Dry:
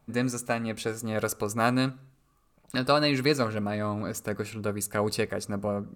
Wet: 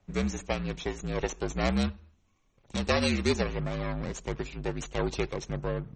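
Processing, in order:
lower of the sound and its delayed copy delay 0.32 ms
frequency shifter −55 Hz
level −1 dB
MP3 32 kbit/s 44,100 Hz

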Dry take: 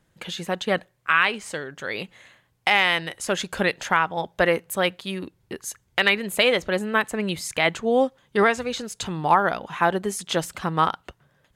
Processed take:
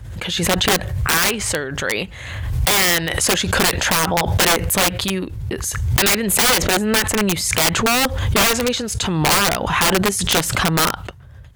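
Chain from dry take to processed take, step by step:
wrap-around overflow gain 17.5 dB
noise in a band 43–120 Hz −51 dBFS
background raised ahead of every attack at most 38 dB per second
level +8 dB

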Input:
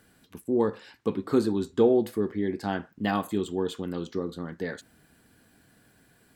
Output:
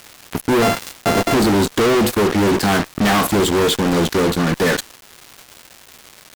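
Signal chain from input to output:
0:00.62–0:01.34: samples sorted by size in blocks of 64 samples
fuzz pedal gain 47 dB, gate −44 dBFS
surface crackle 510 per second −27 dBFS

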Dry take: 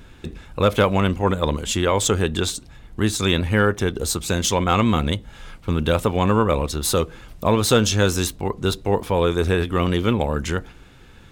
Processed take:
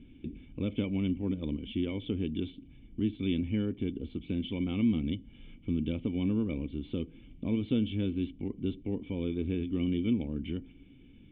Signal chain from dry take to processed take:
in parallel at 0 dB: downward compressor, threshold −30 dBFS, peak gain reduction 17 dB
on the sum: formant resonators in series i
level −3.5 dB

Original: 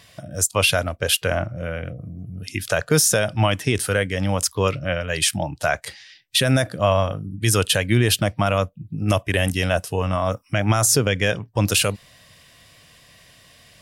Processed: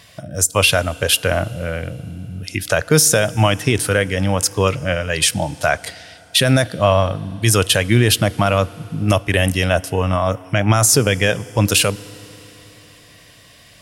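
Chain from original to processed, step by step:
feedback delay network reverb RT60 3.8 s, high-frequency decay 0.95×, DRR 19.5 dB
level +4 dB

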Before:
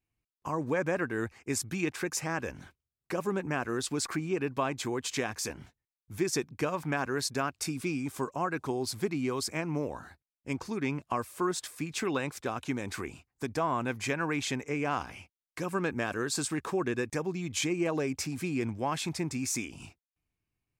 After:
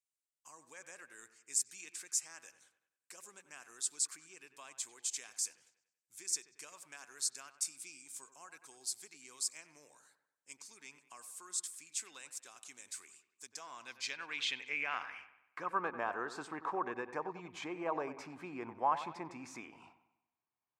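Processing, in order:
band-pass filter sweep 8,000 Hz → 950 Hz, 0:13.35–0:15.88
delay with a low-pass on its return 95 ms, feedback 46%, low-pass 2,500 Hz, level −12 dB
level +3.5 dB

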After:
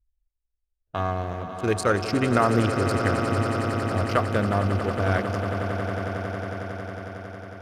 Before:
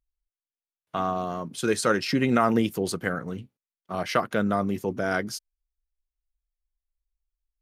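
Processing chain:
adaptive Wiener filter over 41 samples
low shelf with overshoot 120 Hz +8 dB, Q 3
echo that builds up and dies away 91 ms, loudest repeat 8, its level −12 dB
level +1.5 dB

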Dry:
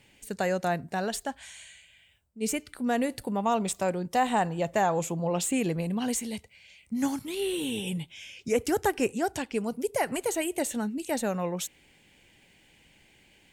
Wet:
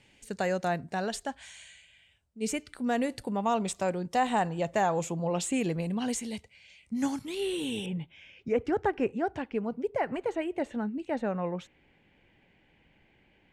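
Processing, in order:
low-pass filter 8,200 Hz 12 dB per octave, from 0:07.86 2,000 Hz
level −1.5 dB

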